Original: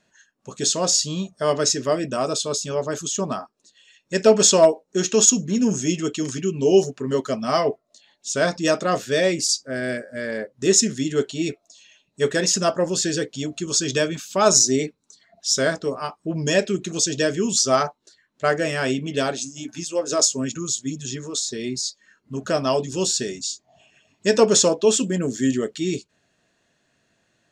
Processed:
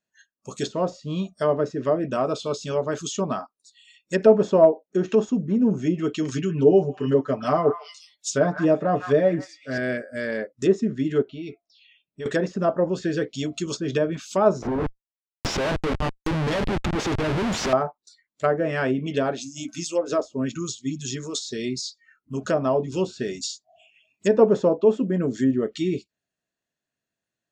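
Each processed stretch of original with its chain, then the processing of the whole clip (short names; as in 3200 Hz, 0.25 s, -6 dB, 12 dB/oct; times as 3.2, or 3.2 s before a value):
6.31–9.78 high shelf 9900 Hz +3 dB + comb 6.8 ms, depth 59% + delay with a stepping band-pass 0.154 s, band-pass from 1300 Hz, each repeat 1.4 oct, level -7 dB
11.22–12.26 compressor 3:1, threshold -33 dBFS + air absorption 200 m
14.62–17.73 bell 2200 Hz -13.5 dB 0.24 oct + Schmitt trigger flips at -27.5 dBFS
whole clip: spectral noise reduction 21 dB; treble ducked by the level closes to 950 Hz, closed at -17 dBFS; high shelf 10000 Hz +8.5 dB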